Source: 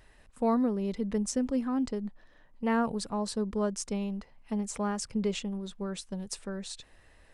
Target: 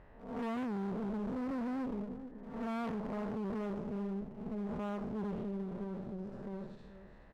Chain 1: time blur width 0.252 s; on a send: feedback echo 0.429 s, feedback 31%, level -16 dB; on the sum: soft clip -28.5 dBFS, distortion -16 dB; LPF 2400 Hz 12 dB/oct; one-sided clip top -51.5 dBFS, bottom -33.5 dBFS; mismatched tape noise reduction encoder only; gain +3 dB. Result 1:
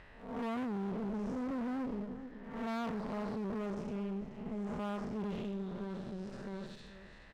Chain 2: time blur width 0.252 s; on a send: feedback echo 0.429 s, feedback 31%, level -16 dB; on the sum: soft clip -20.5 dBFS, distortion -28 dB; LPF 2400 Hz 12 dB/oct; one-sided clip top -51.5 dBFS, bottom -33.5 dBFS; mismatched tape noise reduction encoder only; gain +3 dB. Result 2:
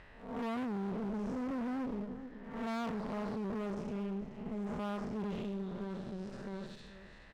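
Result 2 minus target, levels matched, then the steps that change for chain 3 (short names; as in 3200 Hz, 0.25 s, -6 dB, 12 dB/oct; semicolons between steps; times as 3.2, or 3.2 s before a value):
2000 Hz band +2.5 dB
change: LPF 920 Hz 12 dB/oct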